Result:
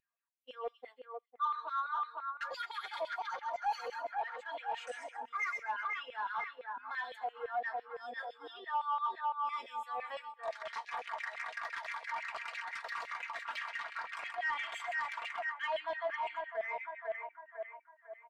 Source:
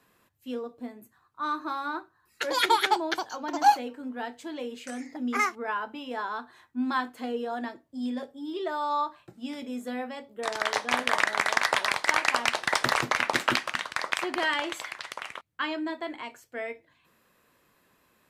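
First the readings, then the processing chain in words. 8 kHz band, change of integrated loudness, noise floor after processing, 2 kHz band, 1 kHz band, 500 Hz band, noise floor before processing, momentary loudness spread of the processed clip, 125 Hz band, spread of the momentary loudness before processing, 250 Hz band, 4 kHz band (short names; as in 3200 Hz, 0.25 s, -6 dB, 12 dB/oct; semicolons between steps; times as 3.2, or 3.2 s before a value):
under -20 dB, -10.0 dB, -67 dBFS, -10.0 dB, -8.0 dB, -8.5 dB, -67 dBFS, 9 LU, under -25 dB, 14 LU, under -30 dB, -16.0 dB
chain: HPF 370 Hz 12 dB/oct; gate -45 dBFS, range -60 dB; comb 4.3 ms, depth 63%; in parallel at -2 dB: upward compressor, threshold -29 dBFS; on the sum: split-band echo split 2300 Hz, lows 0.501 s, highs 0.131 s, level -7.5 dB; reverse; compressor 12:1, threshold -29 dBFS, peak gain reduction 20.5 dB; reverse; LFO high-pass saw down 5.9 Hz 520–2600 Hz; soft clip -27 dBFS, distortion -11 dB; spectral expander 1.5:1; gain +1 dB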